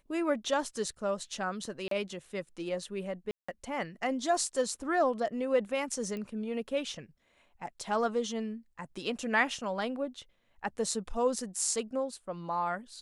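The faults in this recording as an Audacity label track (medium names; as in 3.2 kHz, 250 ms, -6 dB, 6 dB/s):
1.880000	1.910000	dropout 33 ms
3.310000	3.480000	dropout 175 ms
6.170000	6.170000	pop -27 dBFS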